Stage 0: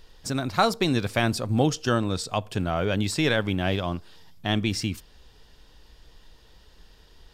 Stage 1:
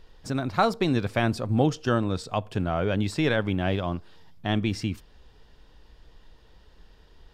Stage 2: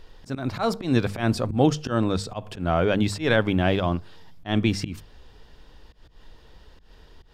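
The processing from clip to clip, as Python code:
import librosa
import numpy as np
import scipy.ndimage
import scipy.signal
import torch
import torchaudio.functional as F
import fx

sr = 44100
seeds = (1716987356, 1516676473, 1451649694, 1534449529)

y1 = fx.high_shelf(x, sr, hz=3600.0, db=-11.0)
y2 = fx.auto_swell(y1, sr, attack_ms=137.0)
y2 = fx.hum_notches(y2, sr, base_hz=50, count=4)
y2 = y2 * librosa.db_to_amplitude(5.0)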